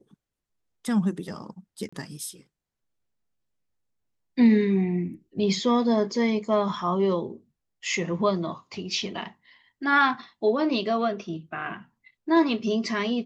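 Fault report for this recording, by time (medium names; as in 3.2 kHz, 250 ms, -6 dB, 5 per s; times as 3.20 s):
1.89–1.93 s: dropout 35 ms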